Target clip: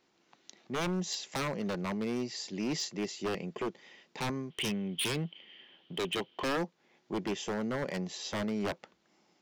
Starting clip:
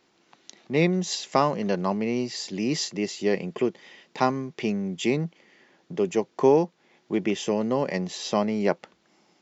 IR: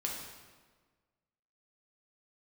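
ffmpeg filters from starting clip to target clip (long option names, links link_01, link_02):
-filter_complex "[0:a]asettb=1/sr,asplit=3[link_01][link_02][link_03];[link_01]atrim=end=4.504[link_04];[link_02]atrim=start=4.5:end=6.57,asetpts=PTS-STARTPTS,afade=type=in:duration=0.004:curve=qsin,afade=type=out:start_time=2.066:duration=0.004:curve=qsin,lowpass=frequency=3100:width_type=q:width=15[link_05];[link_03]atrim=start=6.566[link_06];[link_04][link_05]acrossfade=duration=0.004:curve1=hsin:curve2=qsin[link_07];[link_07][link_06]acrossfade=duration=0.004:curve1=qsin:curve2=hsin,aeval=exprs='0.1*(abs(mod(val(0)/0.1+3,4)-2)-1)':channel_layout=same,volume=-6.5dB"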